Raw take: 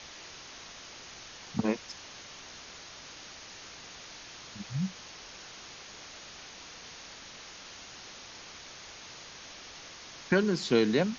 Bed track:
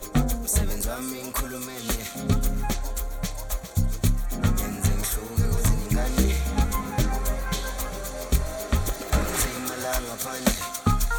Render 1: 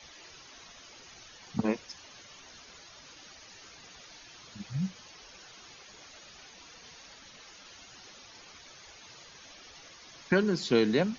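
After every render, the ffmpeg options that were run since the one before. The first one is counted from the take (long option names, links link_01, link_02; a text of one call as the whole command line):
ffmpeg -i in.wav -af "afftdn=noise_reduction=11:noise_floor=-48" out.wav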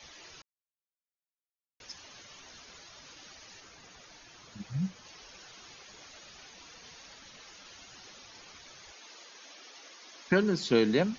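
ffmpeg -i in.wav -filter_complex "[0:a]asettb=1/sr,asplit=3[link_01][link_02][link_03];[link_01]atrim=end=3.604[link_04];[link_02]atrim=start=3.6:end=5.05,asetpts=PTS-STARTPTS,afade=type=in:duration=0.004:curve=qsin,afade=type=out:start_time=1.446:duration=0.004:curve=qsin,equalizer=frequency=4000:width_type=o:width=1.9:gain=-4[link_05];[link_03]atrim=start=5.046[link_06];[link_04][link_05]acrossfade=duration=0.004:curve1=hsin:curve2=qsin[link_07];[link_07][link_06]acrossfade=duration=0.004:curve1=qsin:curve2=hsin,asettb=1/sr,asplit=3[link_08][link_09][link_10];[link_08]atrim=end=8.924[link_11];[link_09]atrim=start=8.92:end=10.28,asetpts=PTS-STARTPTS,afade=type=in:duration=0.004:curve=qsin,afade=type=out:start_time=1.356:duration=0.004:curve=qsin,highpass=frequency=250:width=0.5412,highpass=frequency=250:width=1.3066[link_12];[link_10]atrim=start=10.276[link_13];[link_11][link_12]acrossfade=duration=0.004:curve1=hsin:curve2=qsin[link_14];[link_14][link_13]acrossfade=duration=0.004:curve1=qsin:curve2=hsin,asplit=3[link_15][link_16][link_17];[link_15]atrim=end=0.42,asetpts=PTS-STARTPTS,afade=type=out:start_time=0.416:duration=0.004:curve=hsin[link_18];[link_16]atrim=start=0.42:end=1.8,asetpts=PTS-STARTPTS,volume=0[link_19];[link_17]atrim=start=1.8,asetpts=PTS-STARTPTS,afade=type=in:duration=0.004:curve=hsin[link_20];[link_18][link_19][link_20]concat=n=3:v=0:a=1" out.wav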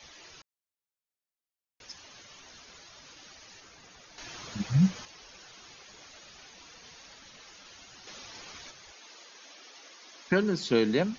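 ffmpeg -i in.wav -filter_complex "[0:a]asettb=1/sr,asplit=3[link_01][link_02][link_03];[link_01]atrim=end=8.074[link_04];[link_02]atrim=start=8.07:end=8.71,asetpts=PTS-STARTPTS,afade=type=in:duration=0.004:curve=qsin,afade=type=out:start_time=0.636:duration=0.004:curve=qsin,acontrast=32[link_05];[link_03]atrim=start=8.706[link_06];[link_04][link_05]acrossfade=duration=0.004:curve1=hsin:curve2=qsin[link_07];[link_07][link_06]acrossfade=duration=0.004:curve1=qsin:curve2=hsin,asplit=3[link_08][link_09][link_10];[link_08]atrim=end=4.182[link_11];[link_09]atrim=start=4.178:end=5.052,asetpts=PTS-STARTPTS,volume=10dB[link_12];[link_10]atrim=start=5.048[link_13];[link_11][link_12]acrossfade=duration=0.004:curve1=hsin:curve2=hsin[link_14];[link_14][link_13]acrossfade=duration=0.004:curve1=hsin:curve2=hsin" out.wav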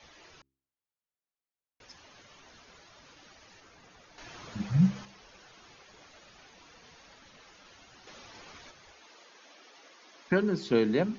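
ffmpeg -i in.wav -af "highshelf=frequency=3200:gain=-10.5,bandreject=frequency=66.6:width_type=h:width=4,bandreject=frequency=133.2:width_type=h:width=4,bandreject=frequency=199.8:width_type=h:width=4,bandreject=frequency=266.4:width_type=h:width=4,bandreject=frequency=333:width_type=h:width=4,bandreject=frequency=399.6:width_type=h:width=4" out.wav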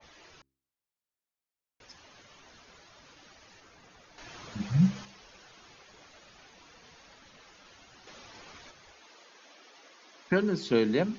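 ffmpeg -i in.wav -af "adynamicequalizer=threshold=0.00398:dfrequency=2200:dqfactor=0.7:tfrequency=2200:tqfactor=0.7:attack=5:release=100:ratio=0.375:range=1.5:mode=boostabove:tftype=highshelf" out.wav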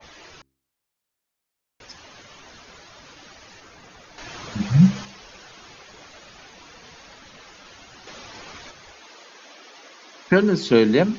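ffmpeg -i in.wav -af "volume=9.5dB" out.wav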